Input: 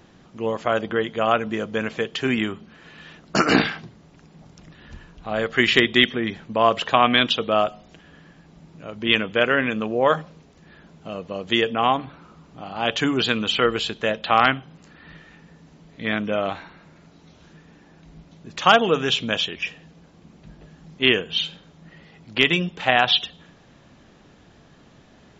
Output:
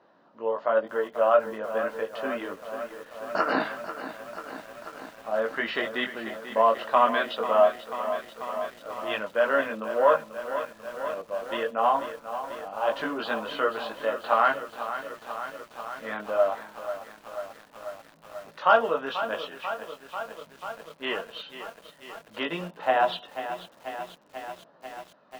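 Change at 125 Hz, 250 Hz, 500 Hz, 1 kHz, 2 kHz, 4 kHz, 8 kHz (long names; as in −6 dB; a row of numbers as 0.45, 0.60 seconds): below −15 dB, −12.0 dB, −1.5 dB, −2.5 dB, −8.0 dB, −15.5 dB, can't be measured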